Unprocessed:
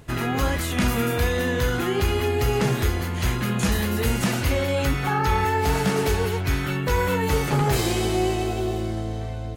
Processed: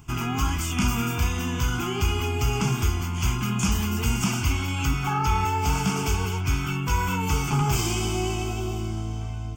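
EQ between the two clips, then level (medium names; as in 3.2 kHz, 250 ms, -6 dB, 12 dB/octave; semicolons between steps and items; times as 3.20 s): treble shelf 4.4 kHz +5.5 dB; static phaser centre 2.7 kHz, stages 8; 0.0 dB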